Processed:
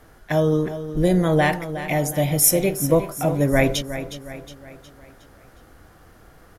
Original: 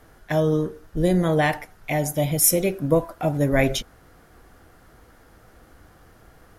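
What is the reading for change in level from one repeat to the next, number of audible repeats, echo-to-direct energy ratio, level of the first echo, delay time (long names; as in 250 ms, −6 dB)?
−6.5 dB, 4, −11.0 dB, −12.0 dB, 363 ms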